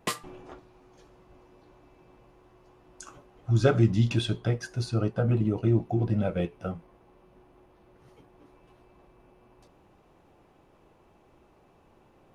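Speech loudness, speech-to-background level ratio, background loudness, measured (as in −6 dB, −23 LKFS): −26.5 LKFS, 10.0 dB, −36.5 LKFS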